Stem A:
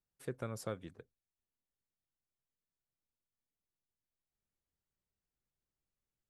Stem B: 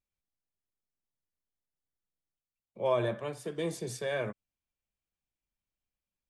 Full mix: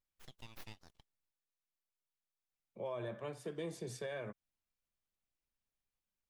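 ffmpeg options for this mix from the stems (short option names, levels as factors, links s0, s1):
-filter_complex "[0:a]highpass=f=1400:w=0.5412,highpass=f=1400:w=1.3066,aeval=exprs='abs(val(0))':c=same,volume=1.33[s0];[1:a]alimiter=level_in=1.78:limit=0.0631:level=0:latency=1:release=223,volume=0.562,volume=0.668,asplit=3[s1][s2][s3];[s1]atrim=end=1.31,asetpts=PTS-STARTPTS,afade=t=out:st=1.306:d=0.004:c=hsin[s4];[s2]atrim=start=1.31:end=2.51,asetpts=PTS-STARTPTS,volume=0[s5];[s3]atrim=start=2.51,asetpts=PTS-STARTPTS,afade=t=in:d=0.004:c=hsin[s6];[s4][s5][s6]concat=n=3:v=0:a=1[s7];[s0][s7]amix=inputs=2:normalize=0,highshelf=f=5300:g=-5"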